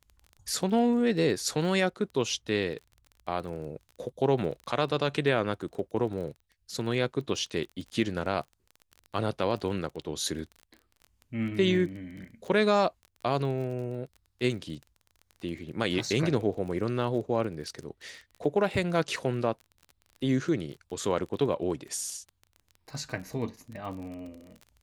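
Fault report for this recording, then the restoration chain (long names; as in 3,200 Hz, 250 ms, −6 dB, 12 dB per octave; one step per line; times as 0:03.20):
surface crackle 26 per second −38 dBFS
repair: click removal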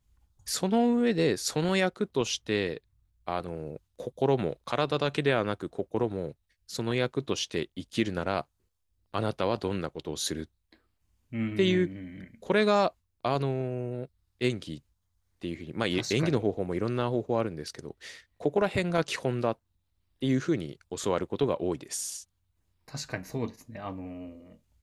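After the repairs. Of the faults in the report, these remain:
none of them is left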